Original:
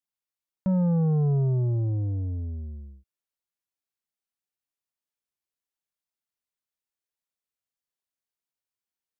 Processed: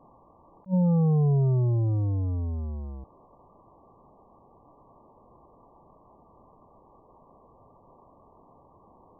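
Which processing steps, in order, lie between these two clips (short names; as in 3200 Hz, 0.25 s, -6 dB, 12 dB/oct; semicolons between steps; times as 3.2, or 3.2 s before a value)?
zero-crossing step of -35 dBFS; brick-wall FIR low-pass 1200 Hz; attack slew limiter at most 380 dB/s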